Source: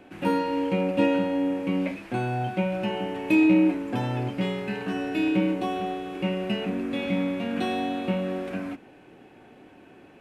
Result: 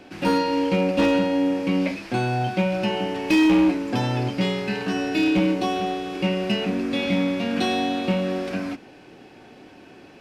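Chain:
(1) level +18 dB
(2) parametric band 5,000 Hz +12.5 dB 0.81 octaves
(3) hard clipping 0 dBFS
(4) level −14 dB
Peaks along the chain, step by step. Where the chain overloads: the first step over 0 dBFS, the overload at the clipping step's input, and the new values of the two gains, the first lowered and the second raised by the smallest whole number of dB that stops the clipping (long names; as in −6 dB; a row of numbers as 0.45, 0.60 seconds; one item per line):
+6.5, +7.5, 0.0, −14.0 dBFS
step 1, 7.5 dB
step 1 +10 dB, step 4 −6 dB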